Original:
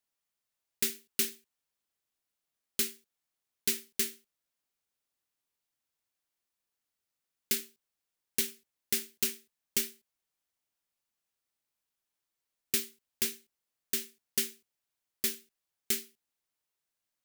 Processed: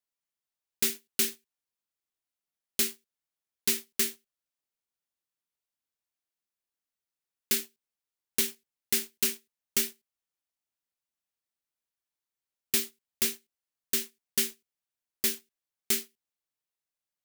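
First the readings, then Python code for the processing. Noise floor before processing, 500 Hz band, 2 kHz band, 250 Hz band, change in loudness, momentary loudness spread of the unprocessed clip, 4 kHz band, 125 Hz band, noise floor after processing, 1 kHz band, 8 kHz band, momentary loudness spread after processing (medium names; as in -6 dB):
under -85 dBFS, +3.5 dB, +3.5 dB, +3.5 dB, +3.5 dB, 6 LU, +3.5 dB, +2.0 dB, under -85 dBFS, +6.5 dB, +3.5 dB, 5 LU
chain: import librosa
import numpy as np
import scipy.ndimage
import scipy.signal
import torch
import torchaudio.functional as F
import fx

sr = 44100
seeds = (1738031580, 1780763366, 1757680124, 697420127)

y = fx.leveller(x, sr, passes=2)
y = F.gain(torch.from_numpy(y), -2.0).numpy()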